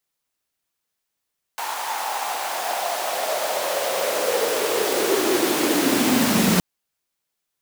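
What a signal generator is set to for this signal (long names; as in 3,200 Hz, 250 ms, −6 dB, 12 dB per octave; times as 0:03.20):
filter sweep on noise pink, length 5.02 s highpass, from 890 Hz, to 180 Hz, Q 5.1, linear, gain ramp +9.5 dB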